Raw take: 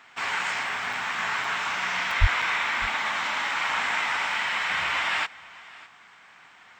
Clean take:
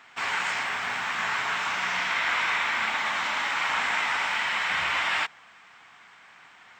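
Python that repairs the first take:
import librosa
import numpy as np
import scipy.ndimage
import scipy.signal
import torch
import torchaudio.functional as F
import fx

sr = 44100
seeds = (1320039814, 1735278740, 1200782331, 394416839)

y = fx.fix_deplosive(x, sr, at_s=(2.2,))
y = fx.fix_interpolate(y, sr, at_s=(0.93, 1.44, 2.11, 2.42), length_ms=3.1)
y = fx.fix_echo_inverse(y, sr, delay_ms=603, level_db=-21.0)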